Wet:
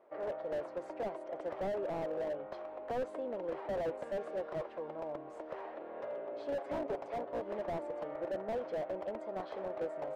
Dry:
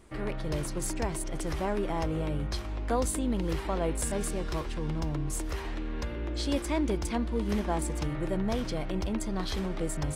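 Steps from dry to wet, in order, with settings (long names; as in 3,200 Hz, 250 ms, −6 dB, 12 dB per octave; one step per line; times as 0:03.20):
0:05.79–0:07.42: lower of the sound and its delayed copy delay 7.2 ms
four-pole ladder band-pass 660 Hz, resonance 60%
slew-rate limiting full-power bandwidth 4.6 Hz
level +8.5 dB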